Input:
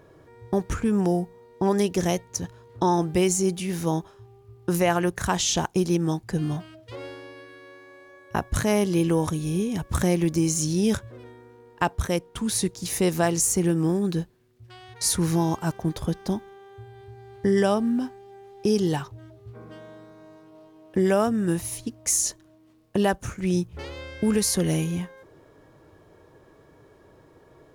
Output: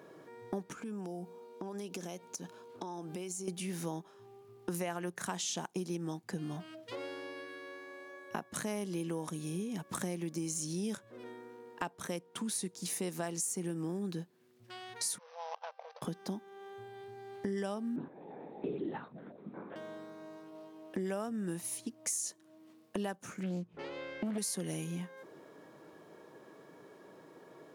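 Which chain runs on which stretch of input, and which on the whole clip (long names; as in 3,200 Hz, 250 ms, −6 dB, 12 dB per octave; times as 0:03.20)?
0:00.72–0:03.48: parametric band 120 Hz −9 dB 0.8 octaves + notch filter 1,900 Hz, Q 6.5 + downward compressor 5 to 1, threshold −35 dBFS
0:15.18–0:16.02: running median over 25 samples + output level in coarse steps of 15 dB + linear-phase brick-wall band-pass 460–6,200 Hz
0:17.96–0:19.76: parametric band 3,100 Hz −14.5 dB 0.25 octaves + linear-prediction vocoder at 8 kHz whisper
0:23.43–0:24.38: low-pass filter 1,900 Hz 6 dB per octave + highs frequency-modulated by the lows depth 0.51 ms
whole clip: Chebyshev high-pass filter 180 Hz, order 3; dynamic equaliser 8,900 Hz, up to +5 dB, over −45 dBFS, Q 2.3; downward compressor 3 to 1, threshold −39 dBFS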